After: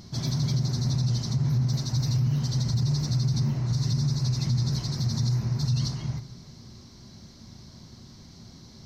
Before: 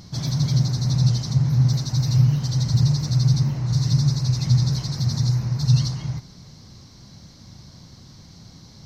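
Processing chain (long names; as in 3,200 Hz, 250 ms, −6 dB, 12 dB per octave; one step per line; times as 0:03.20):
hollow resonant body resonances 230/380 Hz, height 7 dB, ringing for 90 ms
on a send at −14 dB: convolution reverb RT60 1.2 s, pre-delay 3 ms
on the sum: brickwall limiter −15 dBFS, peak gain reduction 7.5 dB
level −3 dB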